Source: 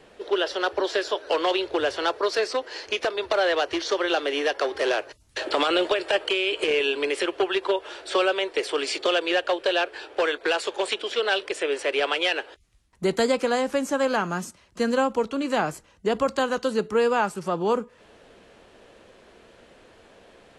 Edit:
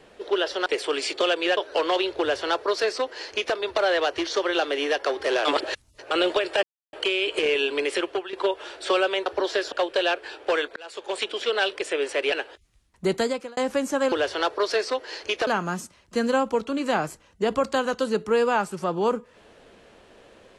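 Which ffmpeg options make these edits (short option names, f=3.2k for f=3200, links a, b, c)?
-filter_complex "[0:a]asplit=14[a][b][c][d][e][f][g][h][i][j][k][l][m][n];[a]atrim=end=0.662[o];[b]atrim=start=8.508:end=9.422[p];[c]atrim=start=1.118:end=5.002[q];[d]atrim=start=4.998:end=5.662,asetpts=PTS-STARTPTS,areverse[r];[e]atrim=start=5.658:end=6.18,asetpts=PTS-STARTPTS,afade=t=out:st=0.518:d=0.004:c=hsin,apad=pad_dur=0.3[s];[f]atrim=start=6.18:end=7.58,asetpts=PTS-STARTPTS,afade=t=in:d=0.004:c=hsin,afade=t=out:st=1.1:d=0.3:silence=0.158489[t];[g]atrim=start=7.58:end=8.512,asetpts=PTS-STARTPTS,afade=t=in:d=0.004:c=hsin:silence=0.158489[u];[h]atrim=start=0.658:end=1.122[v];[i]atrim=start=9.418:end=10.46,asetpts=PTS-STARTPTS,afade=t=out:st=1.038:d=0.004:c=hsin[w];[j]atrim=start=10.46:end=12.022,asetpts=PTS-STARTPTS,afade=t=in:d=0.52[x];[k]atrim=start=12.308:end=13.56,asetpts=PTS-STARTPTS,afade=t=out:st=0.812:d=0.44[y];[l]atrim=start=13.56:end=14.112,asetpts=PTS-STARTPTS,afade=t=in:d=0.004:c=hsin[z];[m]atrim=start=1.748:end=3.102[aa];[n]atrim=start=14.108[ab];[o][p]acrossfade=d=0.004:c1=hsin:c2=hsin[ac];[ac][q]acrossfade=d=0.004:c1=hsin:c2=hsin[ad];[ad][r]acrossfade=d=0.004:c1=hsin:c2=hsin[ae];[s][t][u]concat=n=3:v=0:a=1[af];[ae][af]acrossfade=d=0.004:c1=hsin:c2=hsin[ag];[ag][v]acrossfade=d=0.004:c1=hsin:c2=hsin[ah];[w][x]concat=n=2:v=0:a=1[ai];[ah][ai]acrossfade=d=0.004:c1=hsin:c2=hsin[aj];[y][z]concat=n=2:v=0:a=1[ak];[aj][ak]acrossfade=d=0.004:c1=hsin:c2=hsin[al];[al][aa]acrossfade=d=0.004:c1=hsin:c2=hsin[am];[am][ab]acrossfade=d=0.004:c1=hsin:c2=hsin"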